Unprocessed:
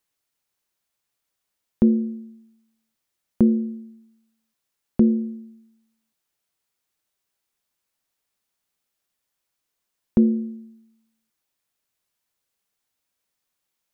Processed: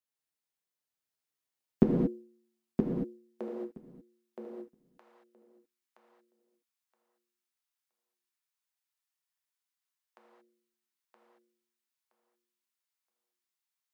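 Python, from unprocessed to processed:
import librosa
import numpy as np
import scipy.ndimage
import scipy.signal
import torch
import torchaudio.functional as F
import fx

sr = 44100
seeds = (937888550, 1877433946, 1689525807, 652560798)

y = fx.highpass(x, sr, hz=fx.steps((0.0, 94.0), (1.83, 440.0), (3.48, 880.0)), slope=24)
y = fx.echo_feedback(y, sr, ms=971, feedback_pct=20, wet_db=-3.5)
y = fx.rev_gated(y, sr, seeds[0], gate_ms=250, shape='flat', drr_db=-3.5)
y = fx.upward_expand(y, sr, threshold_db=-45.0, expansion=1.5)
y = y * librosa.db_to_amplitude(-2.0)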